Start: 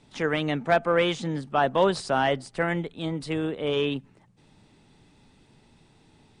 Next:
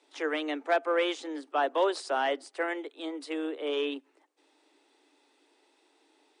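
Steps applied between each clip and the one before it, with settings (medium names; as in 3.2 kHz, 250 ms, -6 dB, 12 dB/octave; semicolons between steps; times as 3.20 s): steep high-pass 280 Hz 96 dB/octave; trim -4.5 dB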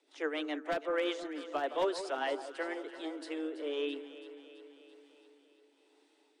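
wavefolder -18 dBFS; rotary cabinet horn 7 Hz, later 1 Hz, at 2.28 s; echo whose repeats swap between lows and highs 166 ms, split 1.3 kHz, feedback 78%, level -11 dB; trim -3 dB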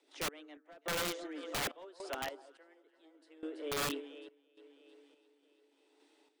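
random-step tremolo 3.5 Hz, depth 95%; integer overflow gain 31 dB; trim +1 dB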